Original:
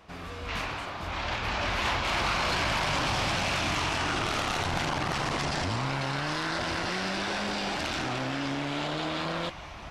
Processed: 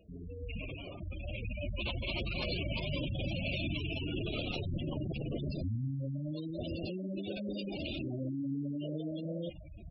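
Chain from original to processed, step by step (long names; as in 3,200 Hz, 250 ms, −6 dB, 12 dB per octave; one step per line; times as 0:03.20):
flat-topped bell 1,200 Hz −11 dB
gate on every frequency bin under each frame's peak −10 dB strong
level −1.5 dB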